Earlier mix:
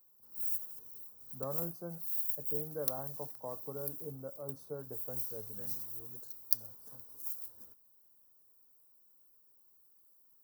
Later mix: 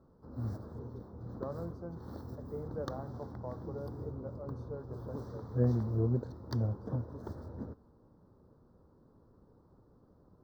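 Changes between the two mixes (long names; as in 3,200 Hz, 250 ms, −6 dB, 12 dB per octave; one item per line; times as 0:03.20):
background: remove first-order pre-emphasis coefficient 0.97
master: add high-frequency loss of the air 220 metres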